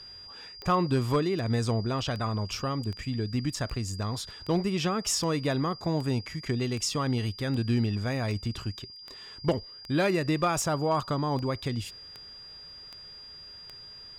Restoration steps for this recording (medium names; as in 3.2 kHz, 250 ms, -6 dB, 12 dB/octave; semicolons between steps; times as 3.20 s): clip repair -17 dBFS; de-click; band-stop 4.8 kHz, Q 30